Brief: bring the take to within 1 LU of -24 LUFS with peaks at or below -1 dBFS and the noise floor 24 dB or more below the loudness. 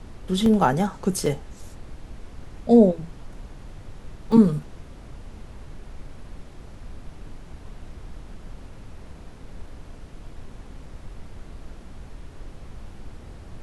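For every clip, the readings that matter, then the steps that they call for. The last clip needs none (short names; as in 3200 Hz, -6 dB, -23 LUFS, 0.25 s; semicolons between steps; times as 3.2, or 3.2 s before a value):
dropouts 3; longest dropout 2.0 ms; noise floor -44 dBFS; noise floor target -45 dBFS; loudness -21.0 LUFS; peak -4.0 dBFS; loudness target -24.0 LUFS
-> interpolate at 0.46/1.26/4.32, 2 ms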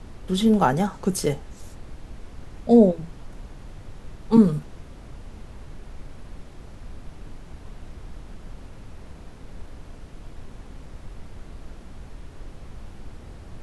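dropouts 0; noise floor -44 dBFS; noise floor target -45 dBFS
-> noise print and reduce 6 dB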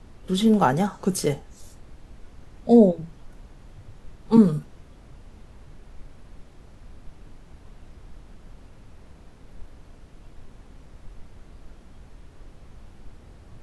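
noise floor -50 dBFS; loudness -21.0 LUFS; peak -4.0 dBFS; loudness target -24.0 LUFS
-> gain -3 dB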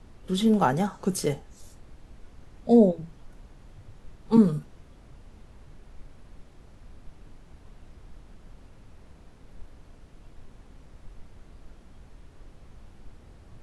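loudness -24.0 LUFS; peak -7.0 dBFS; noise floor -53 dBFS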